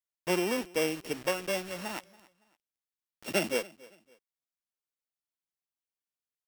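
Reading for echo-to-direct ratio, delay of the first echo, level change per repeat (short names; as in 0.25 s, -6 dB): -22.0 dB, 0.281 s, -10.0 dB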